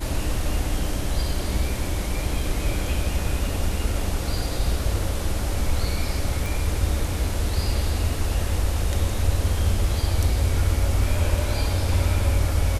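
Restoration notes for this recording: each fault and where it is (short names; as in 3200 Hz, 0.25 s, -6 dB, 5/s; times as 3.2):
6.46 pop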